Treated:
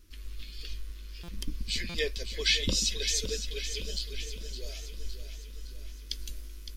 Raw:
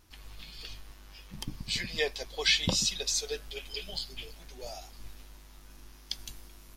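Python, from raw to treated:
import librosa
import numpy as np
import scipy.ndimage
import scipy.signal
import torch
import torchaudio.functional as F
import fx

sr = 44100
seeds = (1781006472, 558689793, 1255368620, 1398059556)

p1 = fx.low_shelf(x, sr, hz=150.0, db=10.0)
p2 = fx.fixed_phaser(p1, sr, hz=330.0, stages=4)
p3 = p2 + fx.echo_feedback(p2, sr, ms=562, feedback_pct=53, wet_db=-10.0, dry=0)
y = fx.buffer_glitch(p3, sr, at_s=(1.23, 1.89), block=256, repeats=8)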